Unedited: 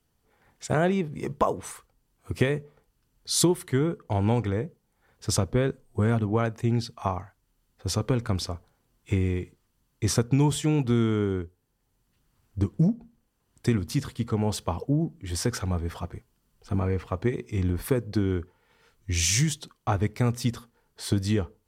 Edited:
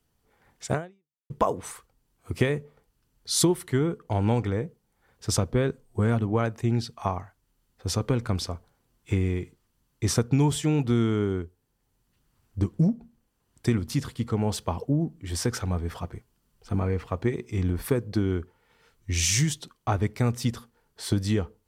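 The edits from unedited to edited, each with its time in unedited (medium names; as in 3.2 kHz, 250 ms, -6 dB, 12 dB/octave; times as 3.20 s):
0.74–1.30 s: fade out exponential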